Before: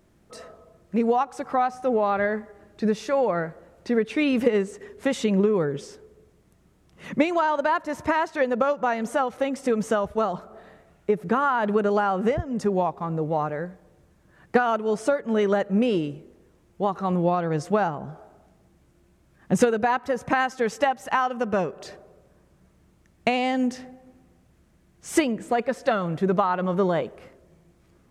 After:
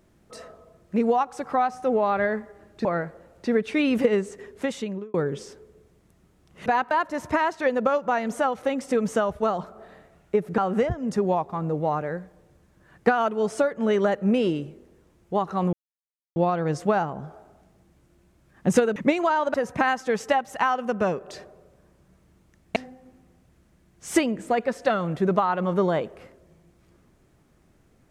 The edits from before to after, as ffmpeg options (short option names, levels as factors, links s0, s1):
-filter_complex "[0:a]asplit=10[s0][s1][s2][s3][s4][s5][s6][s7][s8][s9];[s0]atrim=end=2.852[s10];[s1]atrim=start=3.268:end=5.56,asetpts=PTS-STARTPTS,afade=t=out:st=1.602:d=0.69[s11];[s2]atrim=start=5.56:end=7.082,asetpts=PTS-STARTPTS,afade=t=in:d=0.004:c=hsin[s12];[s3]atrim=start=19.808:end=20.062[s13];[s4]atrim=start=7.658:end=11.332[s14];[s5]atrim=start=12.058:end=17.21,asetpts=PTS-STARTPTS,afade=t=out:st=5.148:d=0.004:c=hsin,apad=pad_dur=0.63[s15];[s6]atrim=start=17.21:end=19.812,asetpts=PTS-STARTPTS,afade=t=in:d=0.004:c=hsin[s16];[s7]atrim=start=7.078:end=7.662[s17];[s8]atrim=start=20.058:end=23.282[s18];[s9]atrim=start=23.768[s19];[s11][s12]concat=n=2:v=0:a=1[s20];[s10][s20]acrossfade=d=0.004:c1=hsin:c2=hsin[s21];[s21][s13]acrossfade=d=0.004:c1=hsin:c2=hsin[s22];[s22][s14]acrossfade=d=0.004:c1=hsin:c2=hsin[s23];[s15][s16]concat=n=2:v=0:a=1[s24];[s23][s24]acrossfade=d=0.004:c1=hsin:c2=hsin[s25];[s25][s17]acrossfade=d=0.004:c1=hsin:c2=hsin[s26];[s26][s18]acrossfade=d=0.004:c1=hsin:c2=hsin[s27];[s27][s19]acrossfade=d=0.004:c1=hsin:c2=hsin"